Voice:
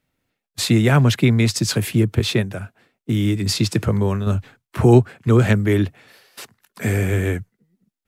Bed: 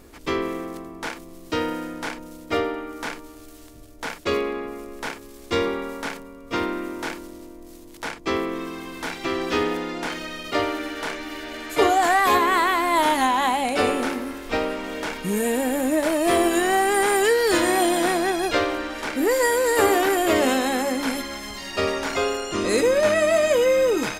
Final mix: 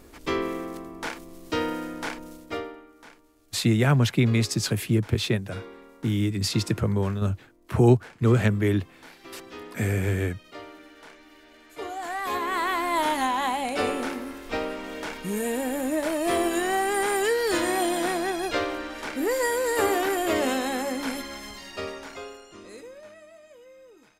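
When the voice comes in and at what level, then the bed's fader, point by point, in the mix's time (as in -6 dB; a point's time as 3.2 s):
2.95 s, -5.5 dB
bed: 2.3 s -2 dB
2.93 s -18.5 dB
11.76 s -18.5 dB
12.73 s -5 dB
21.46 s -5 dB
23.38 s -32 dB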